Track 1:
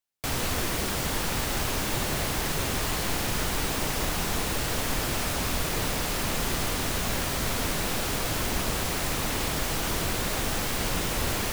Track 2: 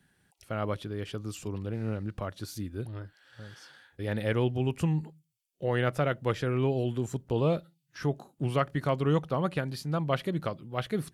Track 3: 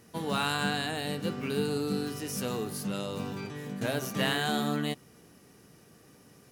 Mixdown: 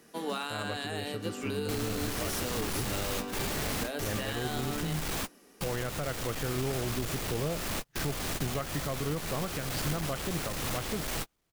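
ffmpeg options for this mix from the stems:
-filter_complex "[0:a]asoftclip=type=tanh:threshold=-31dB,adelay=1450,volume=1dB[a];[1:a]volume=-1dB,asplit=2[b][c];[2:a]highpass=f=230:w=0.5412,highpass=f=230:w=1.3066,volume=0dB[d];[c]apad=whole_len=572179[e];[a][e]sidechaingate=range=-45dB:threshold=-58dB:ratio=16:detection=peak[f];[f][b][d]amix=inputs=3:normalize=0,bandreject=f=950:w=28,alimiter=limit=-23dB:level=0:latency=1:release=191"

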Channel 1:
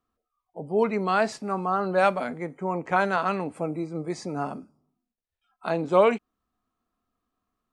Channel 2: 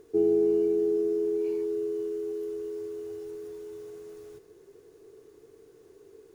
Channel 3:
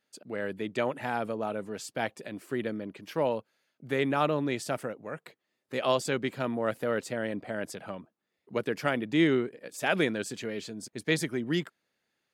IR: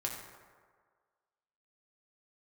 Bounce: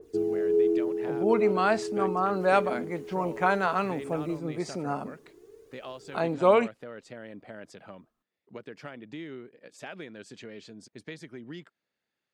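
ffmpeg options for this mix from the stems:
-filter_complex "[0:a]adelay=500,volume=-1.5dB[a];[1:a]aphaser=in_gain=1:out_gain=1:delay=4:decay=0.54:speed=0.49:type=triangular,adynamicequalizer=threshold=0.00501:dfrequency=1700:dqfactor=0.7:tfrequency=1700:tqfactor=0.7:attack=5:release=100:ratio=0.375:range=2.5:mode=cutabove:tftype=highshelf,volume=-2dB[b];[2:a]acompressor=threshold=-33dB:ratio=4,lowpass=6.2k,volume=-6dB[c];[a][b][c]amix=inputs=3:normalize=0"

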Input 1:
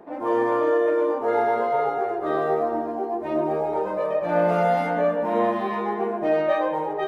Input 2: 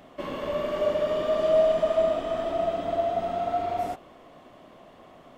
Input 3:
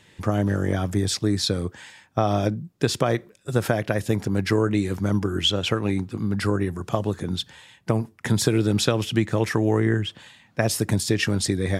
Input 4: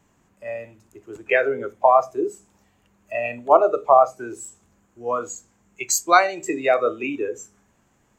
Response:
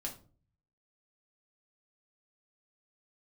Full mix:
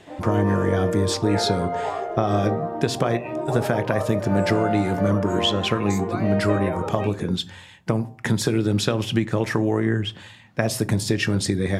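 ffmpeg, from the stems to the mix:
-filter_complex "[0:a]volume=-4.5dB[a];[1:a]adelay=550,volume=-16dB[b];[2:a]bandreject=f=129.1:t=h:w=4,bandreject=f=258.2:t=h:w=4,bandreject=f=387.3:t=h:w=4,bandreject=f=516.4:t=h:w=4,bandreject=f=645.5:t=h:w=4,bandreject=f=774.6:t=h:w=4,bandreject=f=903.7:t=h:w=4,bandreject=f=1.0328k:t=h:w=4,bandreject=f=1.1619k:t=h:w=4,acompressor=threshold=-24dB:ratio=2,volume=2.5dB,asplit=3[c][d][e];[d]volume=-9.5dB[f];[3:a]alimiter=limit=-11.5dB:level=0:latency=1:release=110,volume=-11dB[g];[e]apad=whole_len=261147[h];[b][h]sidechaincompress=threshold=-33dB:ratio=8:attack=16:release=513[i];[4:a]atrim=start_sample=2205[j];[f][j]afir=irnorm=-1:irlink=0[k];[a][i][c][g][k]amix=inputs=5:normalize=0,highshelf=f=4.3k:g=-5"

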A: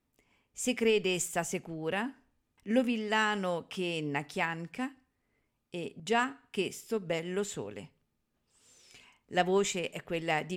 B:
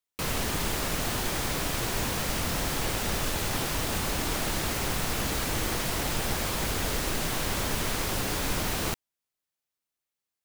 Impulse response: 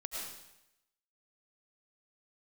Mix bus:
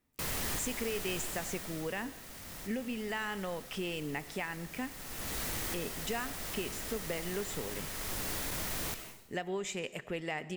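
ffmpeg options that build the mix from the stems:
-filter_complex "[0:a]alimiter=limit=-23.5dB:level=0:latency=1:release=339,acompressor=threshold=-37dB:ratio=2,volume=0dB,asplit=3[a][b][c];[b]volume=-16dB[d];[1:a]highshelf=f=6.6k:g=7.5,asoftclip=type=tanh:threshold=-26dB,volume=1dB,afade=t=out:st=1.2:d=0.76:silence=0.298538,afade=t=in:st=4.69:d=0.66:silence=0.354813,asplit=2[e][f];[f]volume=-4.5dB[g];[c]apad=whole_len=460695[h];[e][h]sidechaincompress=threshold=-48dB:ratio=8:attack=16:release=485[i];[2:a]atrim=start_sample=2205[j];[d][g]amix=inputs=2:normalize=0[k];[k][j]afir=irnorm=-1:irlink=0[l];[a][i][l]amix=inputs=3:normalize=0,equalizer=f=1.9k:w=4.5:g=4"

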